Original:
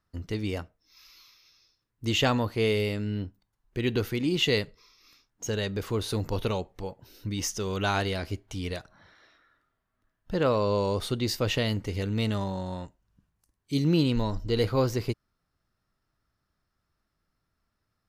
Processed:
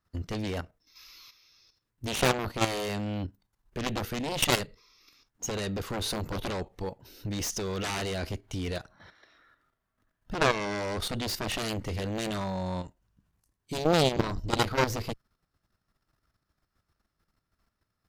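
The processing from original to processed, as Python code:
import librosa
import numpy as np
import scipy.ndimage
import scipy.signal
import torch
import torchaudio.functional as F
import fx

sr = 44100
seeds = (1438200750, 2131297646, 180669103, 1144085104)

y = fx.cheby_harmonics(x, sr, harmonics=(2, 4, 7), levels_db=(-25, -9, -6), full_scale_db=-11.5)
y = fx.level_steps(y, sr, step_db=10)
y = F.gain(torch.from_numpy(y), -2.0).numpy()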